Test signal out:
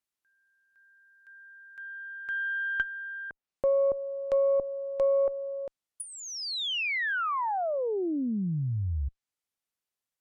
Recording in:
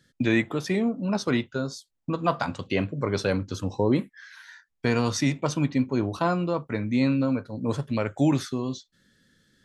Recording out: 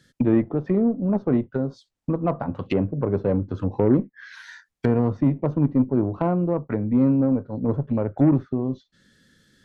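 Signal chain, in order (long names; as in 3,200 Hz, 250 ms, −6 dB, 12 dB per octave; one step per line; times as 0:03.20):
treble cut that deepens with the level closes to 600 Hz, closed at −24.5 dBFS
harmonic generator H 6 −27 dB, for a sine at −12.5 dBFS
level +4.5 dB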